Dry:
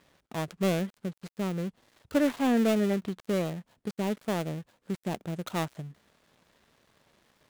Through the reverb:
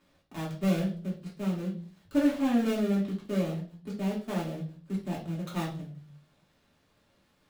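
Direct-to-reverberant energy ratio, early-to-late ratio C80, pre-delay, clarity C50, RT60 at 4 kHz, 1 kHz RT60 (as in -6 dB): -6.0 dB, 13.5 dB, 3 ms, 7.5 dB, 0.40 s, 0.35 s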